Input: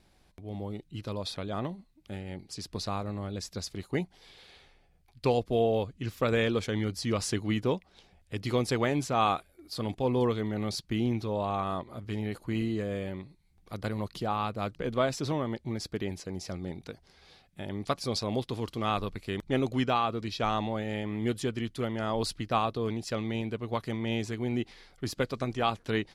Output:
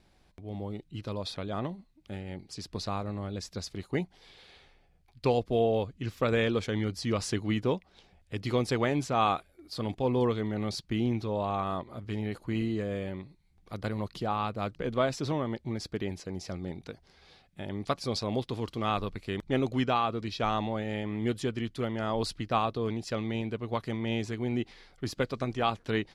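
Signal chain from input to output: high shelf 9800 Hz -9.5 dB

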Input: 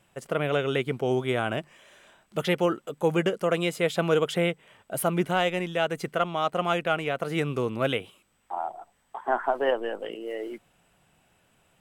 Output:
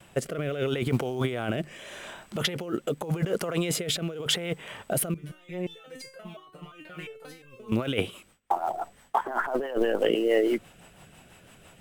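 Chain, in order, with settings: gate with hold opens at -58 dBFS; negative-ratio compressor -34 dBFS, ratio -1; short-mantissa float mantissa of 4-bit; rotary speaker horn 0.8 Hz, later 6 Hz, at 6.68; 5.14–7.72 stepped resonator 5.7 Hz 150–530 Hz; gain +8 dB

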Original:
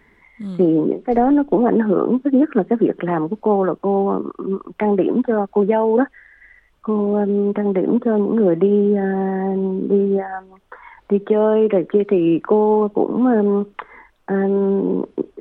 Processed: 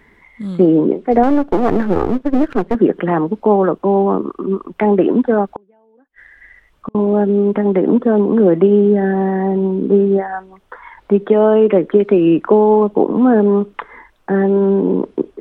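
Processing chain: 1.23–2.75 half-wave gain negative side -12 dB; 5.45–6.95 flipped gate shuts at -16 dBFS, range -41 dB; gain +4 dB

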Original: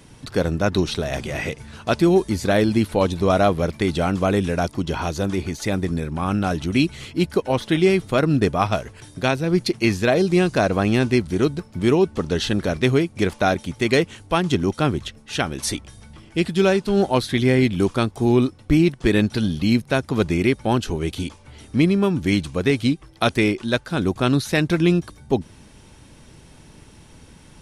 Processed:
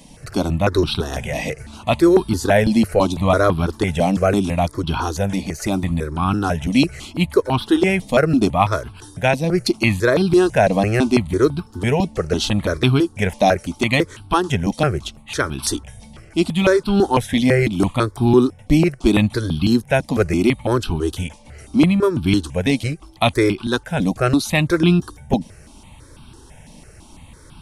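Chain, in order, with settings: step phaser 6 Hz 380–1900 Hz; gain +6 dB

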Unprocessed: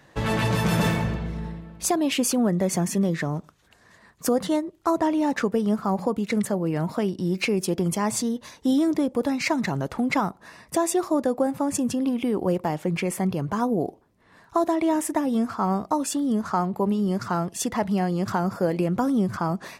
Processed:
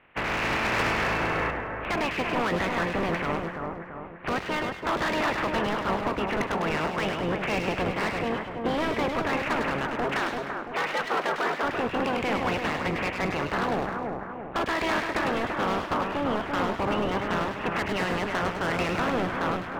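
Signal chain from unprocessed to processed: spectral limiter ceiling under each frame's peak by 29 dB; steep low-pass 2700 Hz 48 dB/oct; hard clip -24 dBFS, distortion -8 dB; 10.04–11.63 frequency shift +150 Hz; split-band echo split 1800 Hz, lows 0.338 s, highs 0.102 s, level -4.5 dB; 0.79–1.51 three-band squash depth 100%

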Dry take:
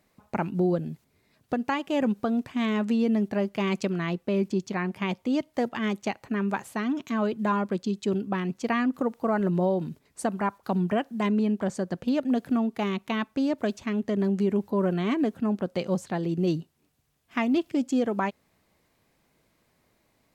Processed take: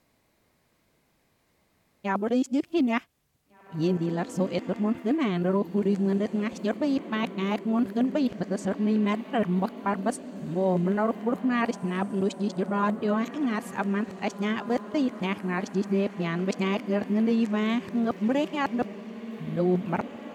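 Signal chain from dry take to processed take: whole clip reversed; diffused feedback echo 1.969 s, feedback 42%, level -13.5 dB

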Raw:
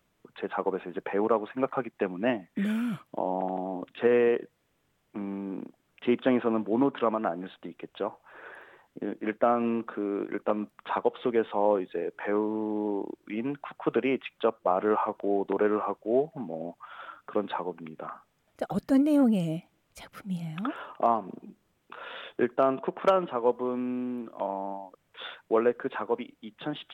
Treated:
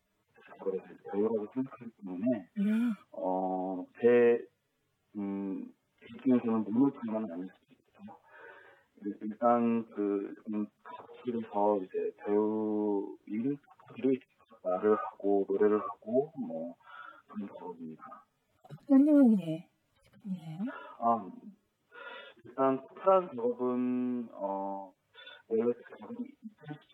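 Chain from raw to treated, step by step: median-filter separation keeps harmonic; notch comb 170 Hz

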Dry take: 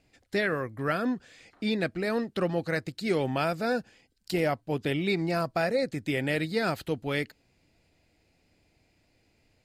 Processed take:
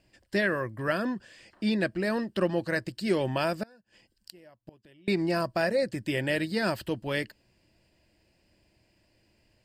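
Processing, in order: ripple EQ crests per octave 1.3, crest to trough 7 dB; 3.63–5.08 flipped gate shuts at -28 dBFS, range -28 dB

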